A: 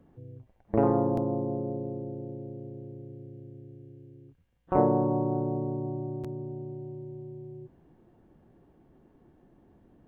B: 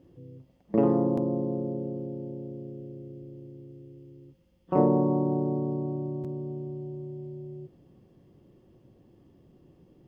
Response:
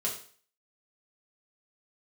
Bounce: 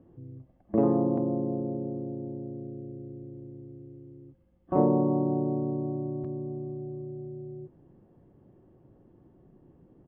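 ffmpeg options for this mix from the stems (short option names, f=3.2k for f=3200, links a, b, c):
-filter_complex "[0:a]acompressor=threshold=-34dB:ratio=6,volume=-4.5dB[a];[1:a]volume=-1,adelay=0.4,volume=-1dB[b];[a][b]amix=inputs=2:normalize=0,lowpass=1.5k"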